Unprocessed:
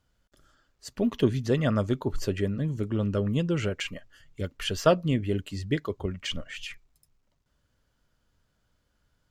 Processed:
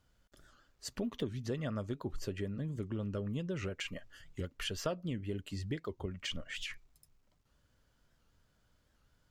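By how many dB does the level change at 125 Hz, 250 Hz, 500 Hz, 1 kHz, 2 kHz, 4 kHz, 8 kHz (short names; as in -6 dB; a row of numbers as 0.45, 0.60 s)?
-11.0, -11.0, -12.5, -13.5, -8.0, -7.0, -6.0 dB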